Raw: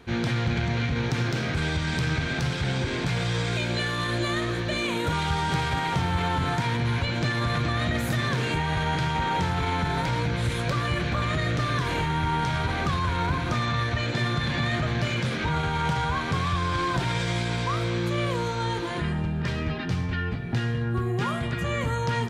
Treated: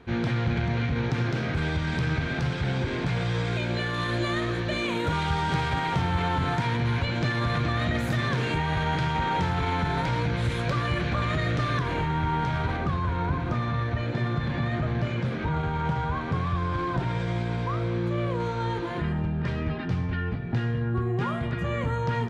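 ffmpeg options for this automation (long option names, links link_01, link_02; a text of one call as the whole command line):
ffmpeg -i in.wav -af "asetnsamples=nb_out_samples=441:pad=0,asendcmd='3.94 lowpass f 3800;11.79 lowpass f 1800;12.77 lowpass f 1000;18.4 lowpass f 1700',lowpass=frequency=2300:poles=1" out.wav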